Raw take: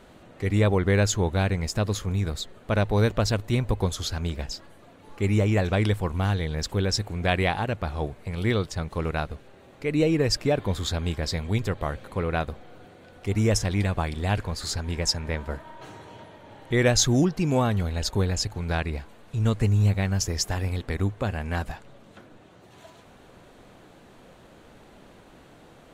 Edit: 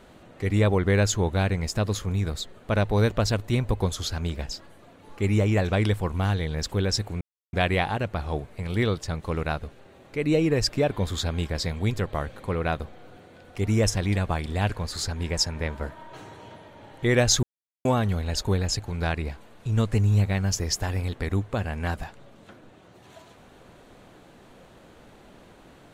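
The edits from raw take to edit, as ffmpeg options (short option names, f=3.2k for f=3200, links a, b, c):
-filter_complex "[0:a]asplit=4[a][b][c][d];[a]atrim=end=7.21,asetpts=PTS-STARTPTS,afade=t=out:st=7.206:d=0.004:c=hsin,apad=pad_dur=0.32[e];[b]atrim=start=7.21:end=17.11,asetpts=PTS-STARTPTS,afade=t=in:d=0.004:c=hsin,afade=t=out:st=9.896:d=0.004:c=hsin[f];[c]atrim=start=17.11:end=17.53,asetpts=PTS-STARTPTS,volume=0[g];[d]atrim=start=17.53,asetpts=PTS-STARTPTS,afade=t=in:d=0.004:c=hsin[h];[e][f][g][h]concat=n=4:v=0:a=1"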